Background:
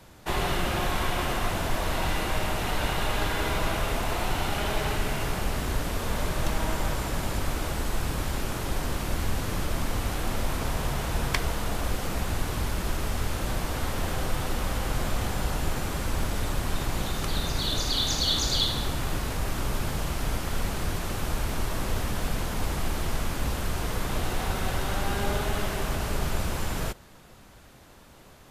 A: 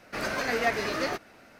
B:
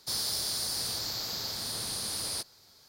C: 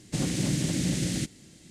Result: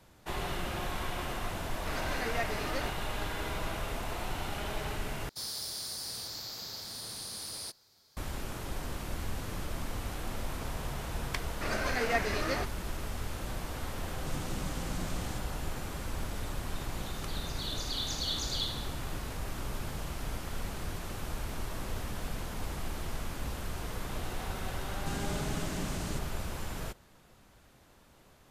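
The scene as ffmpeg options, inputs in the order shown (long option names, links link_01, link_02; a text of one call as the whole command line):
ffmpeg -i bed.wav -i cue0.wav -i cue1.wav -i cue2.wav -filter_complex "[1:a]asplit=2[link_01][link_02];[3:a]asplit=2[link_03][link_04];[0:a]volume=-8.5dB[link_05];[link_02]aresample=22050,aresample=44100[link_06];[link_05]asplit=2[link_07][link_08];[link_07]atrim=end=5.294[link_09];[2:a]atrim=end=2.88,asetpts=PTS-STARTPTS,volume=-6.5dB[link_10];[link_08]atrim=start=8.166[link_11];[link_01]atrim=end=1.59,asetpts=PTS-STARTPTS,volume=-8dB,afade=type=in:duration=0.004:curve=hsin,afade=type=out:start_time=1.586:duration=0.004:curve=hsin,adelay=1730[link_12];[link_06]atrim=end=1.59,asetpts=PTS-STARTPTS,volume=-3.5dB,afade=type=in:duration=0.004:curve=hsin,afade=type=out:start_time=1.586:duration=0.004:curve=hsin,adelay=11480[link_13];[link_03]atrim=end=1.7,asetpts=PTS-STARTPTS,volume=-14dB,afade=type=in:duration=0.004:curve=hsin,afade=type=out:start_time=1.696:duration=0.004:curve=hsin,adelay=14130[link_14];[link_04]atrim=end=1.7,asetpts=PTS-STARTPTS,volume=-11dB,afade=type=in:duration=0.004:curve=hsin,afade=type=out:start_time=1.696:duration=0.004:curve=hsin,adelay=24930[link_15];[link_09][link_10]acrossfade=duration=0.004:curve1=hsin:curve2=hsin[link_16];[link_16][link_11]acrossfade=duration=0.004:curve1=hsin:curve2=hsin[link_17];[link_17][link_12][link_13][link_14][link_15]amix=inputs=5:normalize=0" out.wav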